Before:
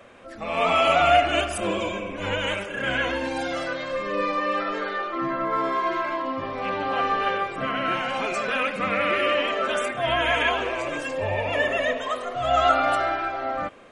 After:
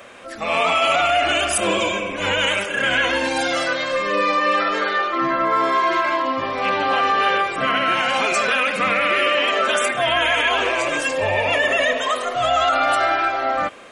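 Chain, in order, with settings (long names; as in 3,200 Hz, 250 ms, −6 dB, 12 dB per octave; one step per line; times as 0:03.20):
spectral tilt +2 dB per octave
brickwall limiter −17 dBFS, peak gain reduction 10.5 dB
level +7.5 dB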